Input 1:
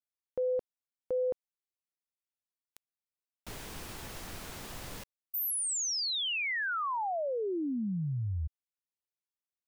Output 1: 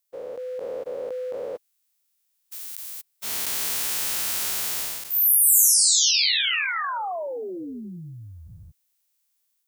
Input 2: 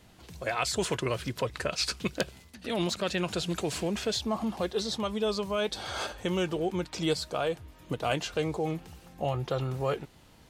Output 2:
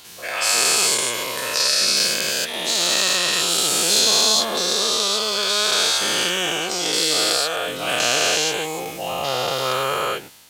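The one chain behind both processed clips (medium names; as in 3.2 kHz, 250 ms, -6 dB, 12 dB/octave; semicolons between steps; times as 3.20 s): every event in the spectrogram widened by 480 ms; tilt EQ +4 dB/octave; level rider gain up to 4 dB; trim -1 dB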